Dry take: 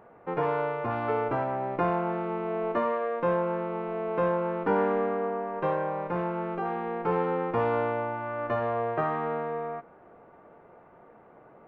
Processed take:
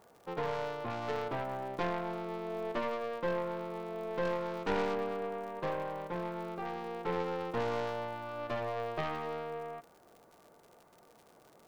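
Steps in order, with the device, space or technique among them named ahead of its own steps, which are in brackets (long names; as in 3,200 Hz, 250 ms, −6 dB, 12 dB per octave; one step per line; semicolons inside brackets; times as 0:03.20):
0:04.25–0:04.95: high-shelf EQ 3,200 Hz +10 dB
record under a worn stylus (stylus tracing distortion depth 0.28 ms; surface crackle 100 per second −39 dBFS; white noise bed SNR 41 dB)
level −8 dB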